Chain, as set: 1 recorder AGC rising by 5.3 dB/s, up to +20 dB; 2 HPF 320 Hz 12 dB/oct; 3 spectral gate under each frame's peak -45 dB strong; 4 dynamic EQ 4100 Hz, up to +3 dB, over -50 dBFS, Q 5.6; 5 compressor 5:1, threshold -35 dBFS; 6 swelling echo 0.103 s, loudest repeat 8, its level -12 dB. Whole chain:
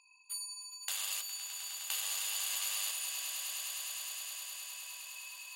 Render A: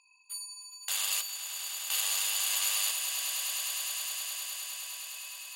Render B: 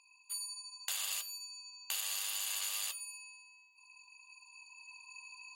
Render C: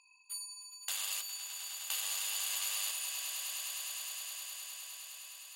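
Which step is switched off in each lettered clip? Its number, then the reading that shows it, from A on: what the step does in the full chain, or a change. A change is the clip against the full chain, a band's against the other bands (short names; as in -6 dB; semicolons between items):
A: 5, mean gain reduction 2.0 dB; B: 6, echo-to-direct -0.5 dB to none; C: 1, momentary loudness spread change +1 LU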